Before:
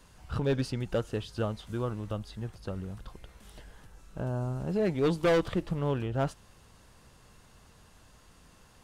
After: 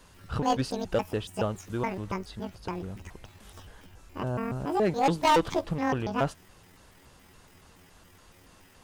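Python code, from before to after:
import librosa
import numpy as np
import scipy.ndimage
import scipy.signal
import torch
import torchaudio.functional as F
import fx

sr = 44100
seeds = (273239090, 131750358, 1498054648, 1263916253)

y = fx.pitch_trill(x, sr, semitones=10.5, every_ms=141)
y = fx.bass_treble(y, sr, bass_db=-3, treble_db=-1)
y = y * 10.0 ** (3.5 / 20.0)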